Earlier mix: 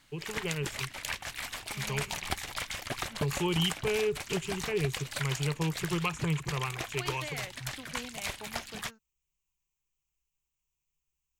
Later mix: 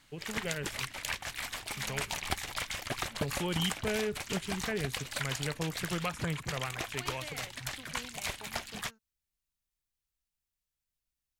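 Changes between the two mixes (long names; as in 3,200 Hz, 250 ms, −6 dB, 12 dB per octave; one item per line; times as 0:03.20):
first voice: remove EQ curve with evenly spaced ripples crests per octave 0.72, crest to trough 14 dB
second voice −5.0 dB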